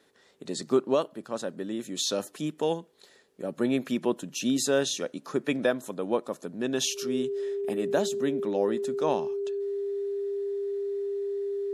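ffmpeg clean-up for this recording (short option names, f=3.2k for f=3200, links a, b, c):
-af "bandreject=f=400:w=30"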